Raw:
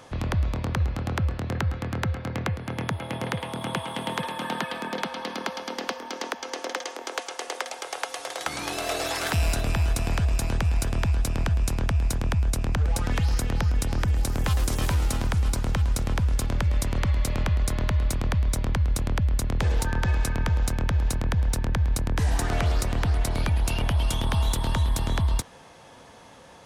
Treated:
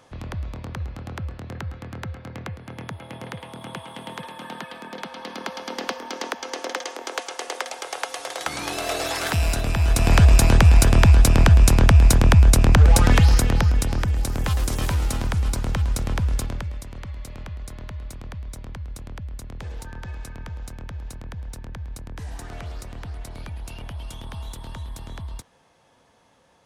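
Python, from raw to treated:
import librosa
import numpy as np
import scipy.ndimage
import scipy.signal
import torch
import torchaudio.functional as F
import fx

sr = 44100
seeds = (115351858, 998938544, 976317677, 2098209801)

y = fx.gain(x, sr, db=fx.line((4.87, -6.0), (5.81, 2.0), (9.75, 2.0), (10.18, 11.0), (13.06, 11.0), (14.11, 1.0), (16.37, 1.0), (16.83, -11.0)))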